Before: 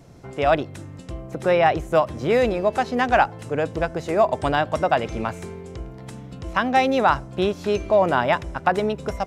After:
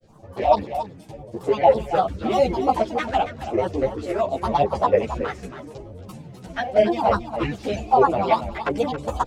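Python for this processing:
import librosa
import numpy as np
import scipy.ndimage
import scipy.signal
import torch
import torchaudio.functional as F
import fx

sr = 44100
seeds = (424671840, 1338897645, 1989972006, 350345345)

p1 = fx.peak_eq(x, sr, hz=740.0, db=10.0, octaves=0.62)
p2 = fx.rider(p1, sr, range_db=4, speed_s=0.5)
p3 = p1 + F.gain(torch.from_numpy(p2), 3.0).numpy()
p4 = fx.env_flanger(p3, sr, rest_ms=10.5, full_db=-1.5)
p5 = fx.filter_lfo_notch(p4, sr, shape='sine', hz=0.9, low_hz=760.0, high_hz=1800.0, q=1.3)
p6 = fx.granulator(p5, sr, seeds[0], grain_ms=100.0, per_s=20.0, spray_ms=19.0, spread_st=7)
p7 = p6 + fx.echo_single(p6, sr, ms=276, db=-11.0, dry=0)
p8 = fx.ensemble(p7, sr)
y = F.gain(torch.from_numpy(p8), -3.5).numpy()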